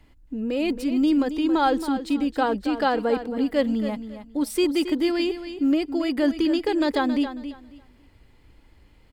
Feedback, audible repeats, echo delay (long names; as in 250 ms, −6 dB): 22%, 2, 273 ms